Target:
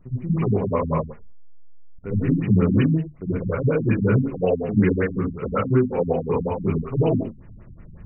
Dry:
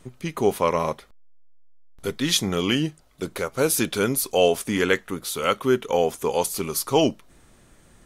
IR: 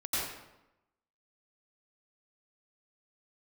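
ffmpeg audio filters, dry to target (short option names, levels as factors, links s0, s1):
-filter_complex "[1:a]atrim=start_sample=2205,afade=t=out:st=0.4:d=0.01,atrim=end_sample=18081,asetrate=70560,aresample=44100[s0];[0:a][s0]afir=irnorm=-1:irlink=0,acompressor=threshold=0.126:ratio=5,bass=f=250:g=11,treble=f=4000:g=1,afftfilt=real='re*lt(b*sr/1024,260*pow(3000/260,0.5+0.5*sin(2*PI*5.4*pts/sr)))':imag='im*lt(b*sr/1024,260*pow(3000/260,0.5+0.5*sin(2*PI*5.4*pts/sr)))':win_size=1024:overlap=0.75"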